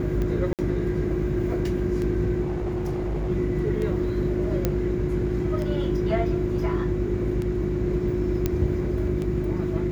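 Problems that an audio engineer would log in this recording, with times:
hum 50 Hz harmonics 7 -29 dBFS
tick 33 1/3 rpm -19 dBFS
0.53–0.59 gap 58 ms
2.42–3.3 clipped -23.5 dBFS
4.65 pop -9 dBFS
8.46 pop -10 dBFS

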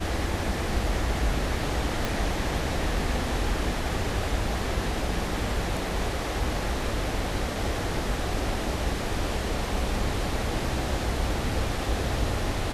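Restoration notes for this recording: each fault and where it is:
2.05 pop

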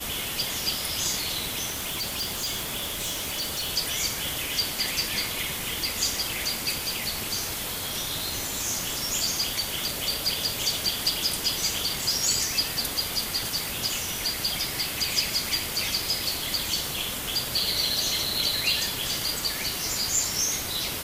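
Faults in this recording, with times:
1.69–3.7 clipped -26 dBFS

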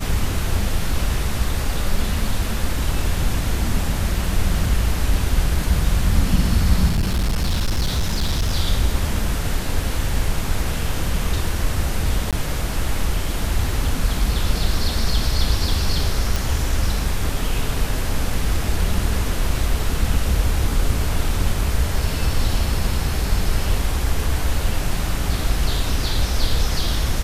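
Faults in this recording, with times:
6.89–8.53 clipped -15.5 dBFS
12.31–12.33 gap 17 ms
16.36 pop

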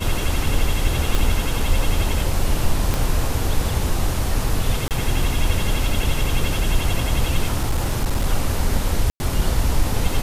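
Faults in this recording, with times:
1.15 pop
2.94 pop -7 dBFS
4.88–4.91 gap 28 ms
7.57–8.26 clipped -15 dBFS
9.1–9.2 gap 0.1 s

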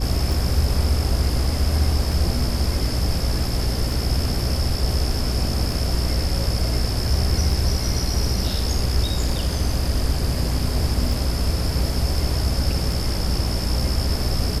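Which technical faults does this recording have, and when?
hum 60 Hz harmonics 5 -25 dBFS
tick 33 1/3 rpm

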